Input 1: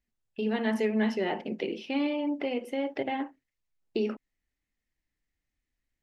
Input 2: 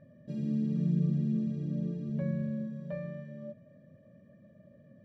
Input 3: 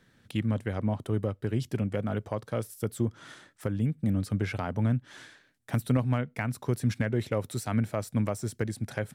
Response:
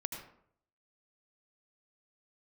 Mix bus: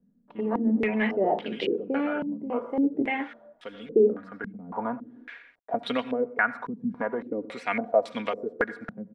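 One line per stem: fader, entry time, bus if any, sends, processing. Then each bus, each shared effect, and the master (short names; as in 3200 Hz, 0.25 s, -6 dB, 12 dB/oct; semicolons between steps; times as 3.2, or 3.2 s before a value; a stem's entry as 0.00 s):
0.0 dB, 0.00 s, no send, hard clip -19.5 dBFS, distortion -29 dB
-15.5 dB, 0.00 s, no send, Chebyshev high-pass 250 Hz, order 3
+1.5 dB, 0.00 s, send -9.5 dB, HPF 460 Hz 12 dB/oct; comb 4.2 ms, depth 62%; auto duck -14 dB, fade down 0.25 s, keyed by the first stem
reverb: on, RT60 0.65 s, pre-delay 72 ms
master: bit-crush 11-bit; stepped low-pass 3.6 Hz 200–3400 Hz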